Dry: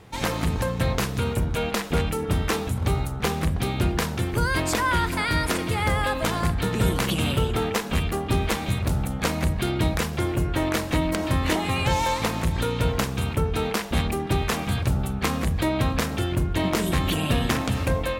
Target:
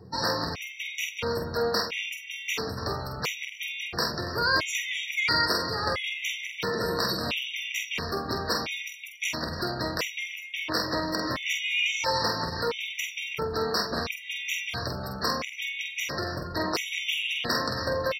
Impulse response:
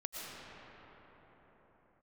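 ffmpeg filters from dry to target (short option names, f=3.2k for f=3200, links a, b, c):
-filter_complex "[0:a]highpass=90,areverse,acompressor=mode=upward:threshold=-29dB:ratio=2.5,areverse,superequalizer=12b=1.58:14b=2.82:15b=0.501:16b=0.398,asoftclip=type=tanh:threshold=-16.5dB,aecho=1:1:281|562|843:0.2|0.0698|0.0244,adynamicequalizer=threshold=0.00355:dfrequency=820:dqfactor=6.5:tfrequency=820:tqfactor=6.5:attack=5:release=100:ratio=0.375:range=3:mode=cutabove:tftype=bell,afftdn=nr=15:nf=-45,acrossover=split=400[a][b];[a]acompressor=threshold=-41dB:ratio=4[c];[c][b]amix=inputs=2:normalize=0,bandreject=f=810:w=12,asplit=2[d][e];[e]adelay=47,volume=-5.5dB[f];[d][f]amix=inputs=2:normalize=0,afftfilt=real='re*gt(sin(2*PI*0.74*pts/sr)*(1-2*mod(floor(b*sr/1024/1900),2)),0)':imag='im*gt(sin(2*PI*0.74*pts/sr)*(1-2*mod(floor(b*sr/1024/1900),2)),0)':win_size=1024:overlap=0.75,volume=2dB"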